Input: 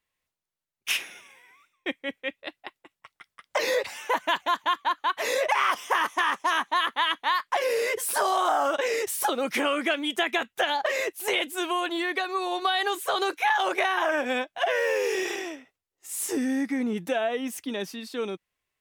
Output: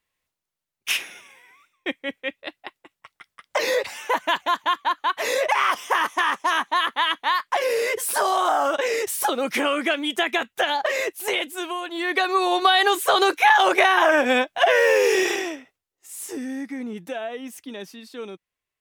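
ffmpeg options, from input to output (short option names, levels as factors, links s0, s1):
-af "volume=5.62,afade=t=out:st=11.12:d=0.79:silence=0.446684,afade=t=in:st=11.91:d=0.34:silence=0.251189,afade=t=out:st=15.21:d=0.93:silence=0.251189"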